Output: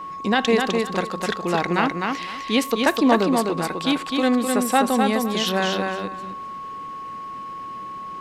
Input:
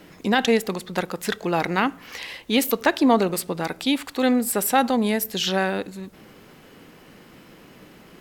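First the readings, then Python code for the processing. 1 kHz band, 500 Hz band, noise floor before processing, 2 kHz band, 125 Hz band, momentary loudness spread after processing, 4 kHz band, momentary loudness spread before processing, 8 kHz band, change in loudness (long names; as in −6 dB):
+3.0 dB, +1.5 dB, −49 dBFS, +1.5 dB, +1.5 dB, 15 LU, +1.5 dB, 11 LU, −2.0 dB, +1.0 dB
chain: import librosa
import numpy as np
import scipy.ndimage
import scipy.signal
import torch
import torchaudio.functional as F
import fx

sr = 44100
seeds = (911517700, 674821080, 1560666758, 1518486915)

y = scipy.signal.sosfilt(scipy.signal.butter(2, 8300.0, 'lowpass', fs=sr, output='sos'), x)
y = fx.echo_feedback(y, sr, ms=255, feedback_pct=18, wet_db=-4.0)
y = y + 10.0 ** (-31.0 / 20.0) * np.sin(2.0 * np.pi * 1100.0 * np.arange(len(y)) / sr)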